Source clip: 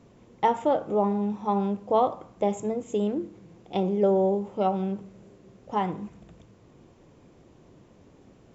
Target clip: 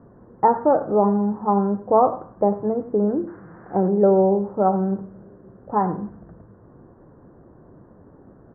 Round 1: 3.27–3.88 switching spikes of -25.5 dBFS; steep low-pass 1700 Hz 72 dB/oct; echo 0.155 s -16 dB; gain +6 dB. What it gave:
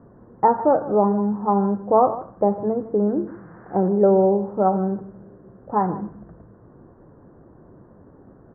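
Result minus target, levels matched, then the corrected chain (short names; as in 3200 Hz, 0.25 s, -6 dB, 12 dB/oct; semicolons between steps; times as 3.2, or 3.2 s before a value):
echo 56 ms late
3.27–3.88 switching spikes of -25.5 dBFS; steep low-pass 1700 Hz 72 dB/oct; echo 99 ms -16 dB; gain +6 dB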